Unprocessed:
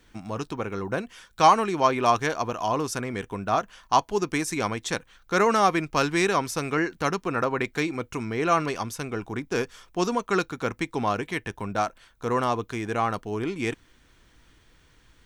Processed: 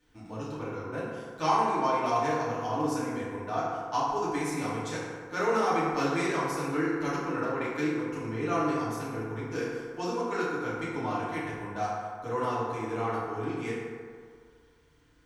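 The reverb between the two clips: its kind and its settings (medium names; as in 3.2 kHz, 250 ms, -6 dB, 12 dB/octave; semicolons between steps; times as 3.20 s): FDN reverb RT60 2 s, low-frequency decay 0.8×, high-frequency decay 0.4×, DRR -9.5 dB; trim -15.5 dB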